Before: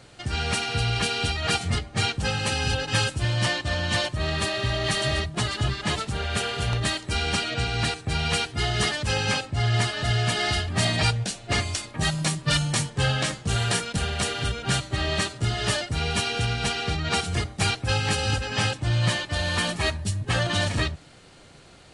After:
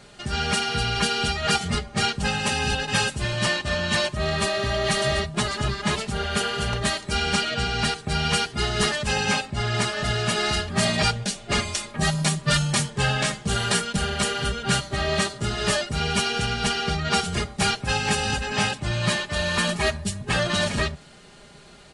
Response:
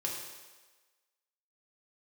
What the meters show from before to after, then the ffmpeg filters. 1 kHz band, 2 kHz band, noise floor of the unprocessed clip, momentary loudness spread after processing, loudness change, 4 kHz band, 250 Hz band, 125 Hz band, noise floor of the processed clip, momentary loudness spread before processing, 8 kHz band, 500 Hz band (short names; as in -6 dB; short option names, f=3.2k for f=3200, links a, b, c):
+3.5 dB, +2.0 dB, -49 dBFS, 3 LU, +1.5 dB, +1.5 dB, +3.0 dB, -2.0 dB, -47 dBFS, 3 LU, +2.5 dB, +3.5 dB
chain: -af "aecho=1:1:4.9:0.62,volume=1dB"